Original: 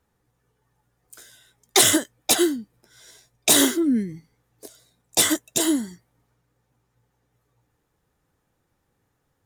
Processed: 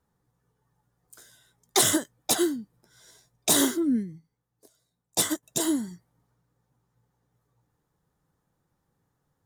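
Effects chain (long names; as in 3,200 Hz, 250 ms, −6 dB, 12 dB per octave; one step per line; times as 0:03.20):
graphic EQ with 15 bands 160 Hz +7 dB, 1,000 Hz +3 dB, 2,500 Hz −6 dB
0:03.96–0:05.43: expander for the loud parts 1.5 to 1, over −36 dBFS
level −5 dB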